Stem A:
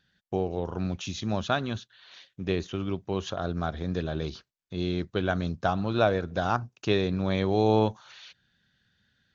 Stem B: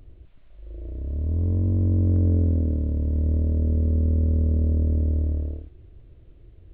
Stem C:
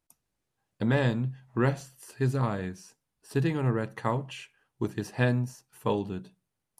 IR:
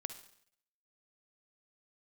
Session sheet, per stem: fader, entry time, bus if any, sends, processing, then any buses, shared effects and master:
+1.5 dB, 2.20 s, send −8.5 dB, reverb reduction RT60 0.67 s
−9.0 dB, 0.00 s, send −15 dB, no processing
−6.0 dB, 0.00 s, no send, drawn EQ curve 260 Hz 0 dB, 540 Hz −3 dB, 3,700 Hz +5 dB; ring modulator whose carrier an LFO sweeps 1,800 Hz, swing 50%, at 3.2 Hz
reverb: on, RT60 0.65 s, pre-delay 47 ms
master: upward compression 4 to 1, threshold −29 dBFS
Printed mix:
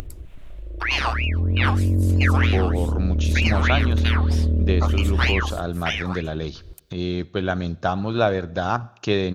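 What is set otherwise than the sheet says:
stem A: missing reverb reduction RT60 0.67 s
stem B −9.0 dB → +0.5 dB
stem C −6.0 dB → +4.0 dB

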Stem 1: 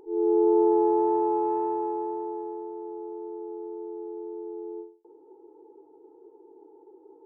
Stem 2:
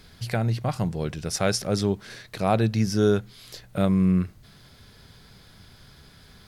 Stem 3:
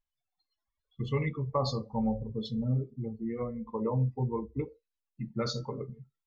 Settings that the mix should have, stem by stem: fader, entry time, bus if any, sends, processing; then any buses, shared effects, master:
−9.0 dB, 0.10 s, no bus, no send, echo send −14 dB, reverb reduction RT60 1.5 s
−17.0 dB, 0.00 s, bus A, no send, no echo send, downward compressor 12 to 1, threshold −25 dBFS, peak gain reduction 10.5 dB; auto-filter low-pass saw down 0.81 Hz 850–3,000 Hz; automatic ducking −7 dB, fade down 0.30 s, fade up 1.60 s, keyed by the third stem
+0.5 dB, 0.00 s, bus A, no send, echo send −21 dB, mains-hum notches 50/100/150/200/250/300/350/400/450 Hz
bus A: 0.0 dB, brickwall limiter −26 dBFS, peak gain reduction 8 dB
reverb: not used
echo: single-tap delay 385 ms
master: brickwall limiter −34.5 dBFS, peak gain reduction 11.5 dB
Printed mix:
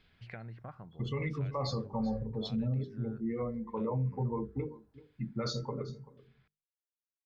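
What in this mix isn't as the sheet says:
stem 1: muted
master: missing brickwall limiter −34.5 dBFS, peak gain reduction 11.5 dB

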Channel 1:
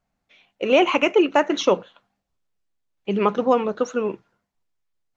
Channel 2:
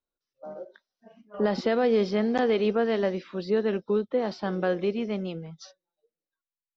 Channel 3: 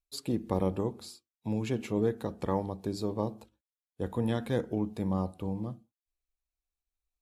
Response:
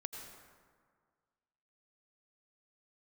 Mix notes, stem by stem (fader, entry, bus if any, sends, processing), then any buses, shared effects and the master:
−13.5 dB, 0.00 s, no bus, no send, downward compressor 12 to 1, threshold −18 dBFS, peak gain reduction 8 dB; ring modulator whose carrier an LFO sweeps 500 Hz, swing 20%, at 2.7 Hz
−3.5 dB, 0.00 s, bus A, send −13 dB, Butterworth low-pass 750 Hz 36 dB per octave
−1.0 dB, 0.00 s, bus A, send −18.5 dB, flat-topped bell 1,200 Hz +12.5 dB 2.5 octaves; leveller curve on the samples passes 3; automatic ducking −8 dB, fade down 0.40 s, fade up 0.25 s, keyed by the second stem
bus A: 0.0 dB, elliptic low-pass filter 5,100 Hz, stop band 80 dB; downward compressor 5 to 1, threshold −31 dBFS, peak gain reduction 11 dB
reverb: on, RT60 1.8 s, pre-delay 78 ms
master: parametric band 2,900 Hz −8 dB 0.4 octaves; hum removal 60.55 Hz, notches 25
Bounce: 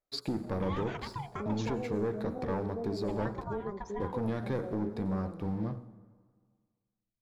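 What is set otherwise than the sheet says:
stem 2 −3.5 dB → −13.5 dB
stem 3: missing flat-topped bell 1,200 Hz +12.5 dB 2.5 octaves

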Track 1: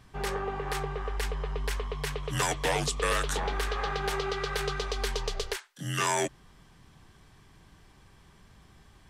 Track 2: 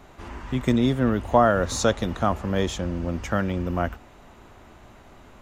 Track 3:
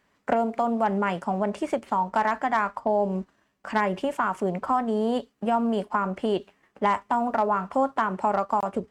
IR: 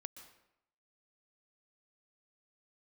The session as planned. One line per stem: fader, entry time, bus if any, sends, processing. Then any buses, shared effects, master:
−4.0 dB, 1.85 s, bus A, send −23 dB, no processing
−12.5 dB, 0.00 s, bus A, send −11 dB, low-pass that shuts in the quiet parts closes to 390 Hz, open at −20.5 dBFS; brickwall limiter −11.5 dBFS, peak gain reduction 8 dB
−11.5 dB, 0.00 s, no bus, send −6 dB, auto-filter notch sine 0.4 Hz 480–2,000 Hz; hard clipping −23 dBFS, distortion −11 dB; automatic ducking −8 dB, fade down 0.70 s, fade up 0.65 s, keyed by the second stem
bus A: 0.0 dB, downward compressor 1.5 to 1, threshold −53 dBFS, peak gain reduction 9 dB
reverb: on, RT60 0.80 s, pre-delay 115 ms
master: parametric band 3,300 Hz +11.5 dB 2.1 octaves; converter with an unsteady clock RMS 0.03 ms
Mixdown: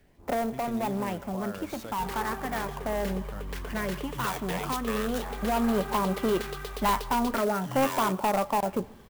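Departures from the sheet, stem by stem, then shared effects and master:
stem 1 −4.0 dB → +4.0 dB
stem 3 −11.5 dB → 0.0 dB
master: missing parametric band 3,300 Hz +11.5 dB 2.1 octaves

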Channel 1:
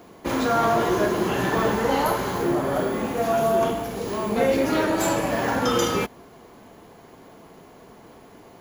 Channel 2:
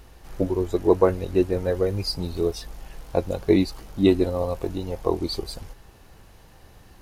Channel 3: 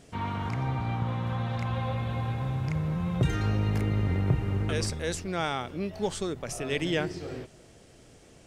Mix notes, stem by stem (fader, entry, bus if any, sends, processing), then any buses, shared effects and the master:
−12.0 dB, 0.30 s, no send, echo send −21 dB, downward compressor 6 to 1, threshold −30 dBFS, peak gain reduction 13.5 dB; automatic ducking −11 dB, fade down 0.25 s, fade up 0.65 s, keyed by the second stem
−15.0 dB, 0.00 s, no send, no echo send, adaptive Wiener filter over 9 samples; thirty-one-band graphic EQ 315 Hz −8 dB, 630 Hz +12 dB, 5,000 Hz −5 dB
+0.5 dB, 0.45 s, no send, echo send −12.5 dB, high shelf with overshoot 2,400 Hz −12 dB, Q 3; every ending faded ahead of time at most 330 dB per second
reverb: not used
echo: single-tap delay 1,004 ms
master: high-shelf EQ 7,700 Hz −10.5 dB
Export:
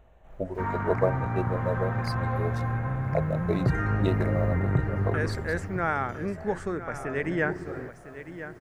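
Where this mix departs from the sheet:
stem 2 −15.0 dB → −9.0 dB
master: missing high-shelf EQ 7,700 Hz −10.5 dB

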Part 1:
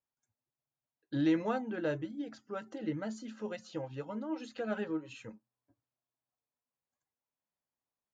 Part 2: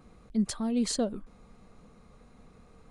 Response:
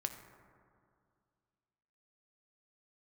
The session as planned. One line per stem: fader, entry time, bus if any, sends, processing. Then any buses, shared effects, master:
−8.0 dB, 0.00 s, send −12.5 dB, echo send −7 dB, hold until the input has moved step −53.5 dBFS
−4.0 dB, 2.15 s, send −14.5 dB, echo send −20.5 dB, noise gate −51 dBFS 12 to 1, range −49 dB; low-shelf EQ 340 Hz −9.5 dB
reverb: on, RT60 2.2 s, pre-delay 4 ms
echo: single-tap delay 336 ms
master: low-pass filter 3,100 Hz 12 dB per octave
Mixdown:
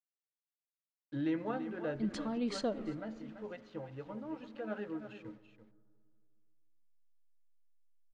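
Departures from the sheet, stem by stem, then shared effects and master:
stem 2: entry 2.15 s → 1.65 s
reverb return +7.5 dB

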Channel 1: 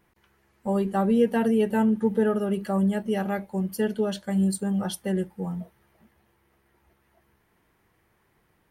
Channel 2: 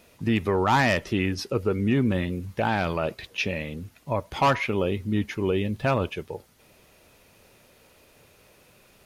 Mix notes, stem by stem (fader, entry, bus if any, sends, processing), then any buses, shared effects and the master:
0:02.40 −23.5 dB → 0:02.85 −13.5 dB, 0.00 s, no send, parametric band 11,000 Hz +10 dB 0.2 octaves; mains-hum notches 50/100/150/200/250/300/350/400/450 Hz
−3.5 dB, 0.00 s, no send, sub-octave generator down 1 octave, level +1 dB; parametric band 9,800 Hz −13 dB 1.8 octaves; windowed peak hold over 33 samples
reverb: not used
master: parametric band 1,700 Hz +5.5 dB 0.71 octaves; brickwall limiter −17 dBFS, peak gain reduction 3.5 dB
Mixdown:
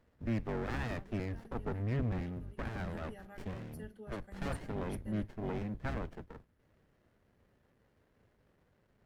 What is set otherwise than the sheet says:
stem 1 −23.5 dB → −35.0 dB
stem 2 −3.5 dB → −13.0 dB

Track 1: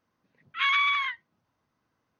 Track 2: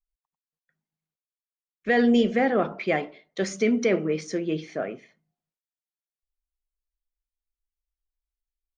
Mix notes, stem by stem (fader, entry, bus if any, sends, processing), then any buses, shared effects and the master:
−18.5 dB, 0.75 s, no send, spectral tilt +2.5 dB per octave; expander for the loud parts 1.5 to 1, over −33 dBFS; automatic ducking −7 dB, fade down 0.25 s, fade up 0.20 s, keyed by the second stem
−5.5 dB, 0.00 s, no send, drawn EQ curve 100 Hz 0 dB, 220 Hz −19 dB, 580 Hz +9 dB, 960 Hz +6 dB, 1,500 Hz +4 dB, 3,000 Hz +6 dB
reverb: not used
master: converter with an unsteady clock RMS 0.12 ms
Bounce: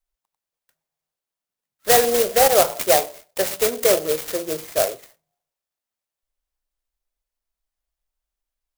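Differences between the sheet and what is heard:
stem 1: entry 0.75 s → 1.25 s
stem 2 −5.5 dB → +3.0 dB

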